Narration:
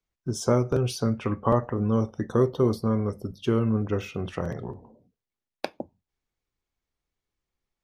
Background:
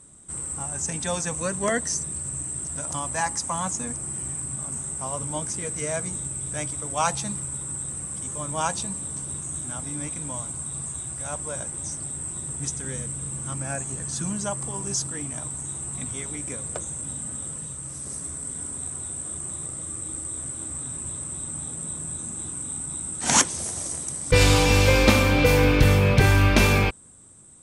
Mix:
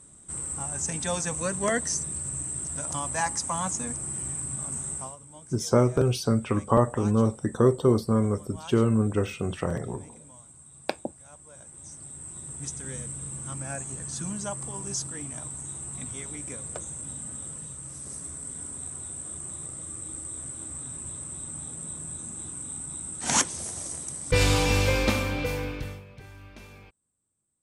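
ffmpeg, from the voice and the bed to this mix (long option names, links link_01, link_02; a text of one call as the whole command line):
ffmpeg -i stem1.wav -i stem2.wav -filter_complex "[0:a]adelay=5250,volume=1.5dB[link_01];[1:a]volume=12dB,afade=type=out:start_time=4.95:duration=0.21:silence=0.149624,afade=type=in:start_time=11.5:duration=1.43:silence=0.211349,afade=type=out:start_time=24.71:duration=1.34:silence=0.0562341[link_02];[link_01][link_02]amix=inputs=2:normalize=0" out.wav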